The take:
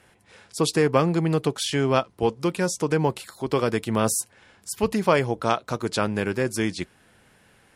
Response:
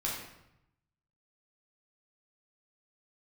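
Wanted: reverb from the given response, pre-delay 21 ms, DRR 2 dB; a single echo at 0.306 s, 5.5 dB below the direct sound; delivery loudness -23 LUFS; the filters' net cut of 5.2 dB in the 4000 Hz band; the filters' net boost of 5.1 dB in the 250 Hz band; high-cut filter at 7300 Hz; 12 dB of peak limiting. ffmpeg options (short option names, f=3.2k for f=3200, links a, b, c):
-filter_complex "[0:a]lowpass=7.3k,equalizer=f=250:t=o:g=7,equalizer=f=4k:t=o:g=-6.5,alimiter=limit=-15dB:level=0:latency=1,aecho=1:1:306:0.531,asplit=2[a][b];[1:a]atrim=start_sample=2205,adelay=21[c];[b][c]afir=irnorm=-1:irlink=0,volume=-6.5dB[d];[a][d]amix=inputs=2:normalize=0,volume=1dB"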